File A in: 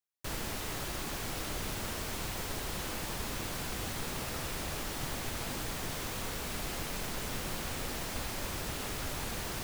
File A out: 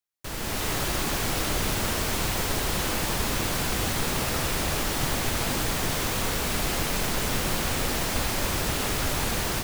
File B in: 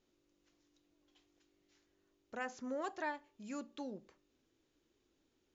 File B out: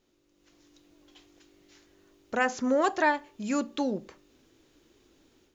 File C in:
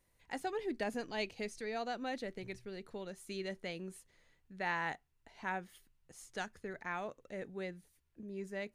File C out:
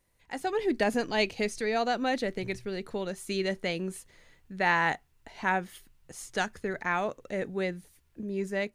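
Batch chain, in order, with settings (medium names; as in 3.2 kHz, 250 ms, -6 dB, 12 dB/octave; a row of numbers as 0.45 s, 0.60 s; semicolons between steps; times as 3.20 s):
level rider gain up to 9 dB; peak normalisation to -12 dBFS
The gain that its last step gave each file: +1.5 dB, +6.5 dB, +2.0 dB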